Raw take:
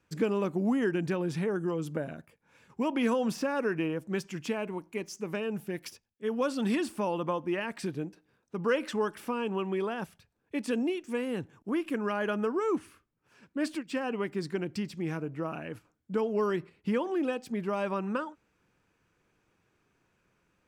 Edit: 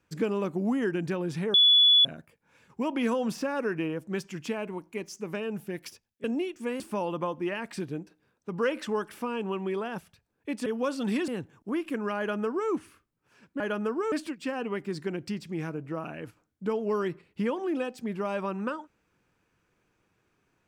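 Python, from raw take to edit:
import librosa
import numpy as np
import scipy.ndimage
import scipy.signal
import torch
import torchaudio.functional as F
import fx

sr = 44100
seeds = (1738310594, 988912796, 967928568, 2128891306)

y = fx.edit(x, sr, fx.bleep(start_s=1.54, length_s=0.51, hz=3420.0, db=-15.5),
    fx.swap(start_s=6.24, length_s=0.62, other_s=10.72, other_length_s=0.56),
    fx.duplicate(start_s=12.18, length_s=0.52, to_s=13.6), tone=tone)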